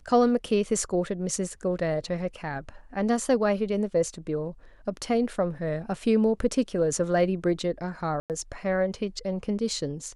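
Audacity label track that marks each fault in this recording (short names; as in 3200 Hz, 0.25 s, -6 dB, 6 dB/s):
8.200000	8.300000	gap 98 ms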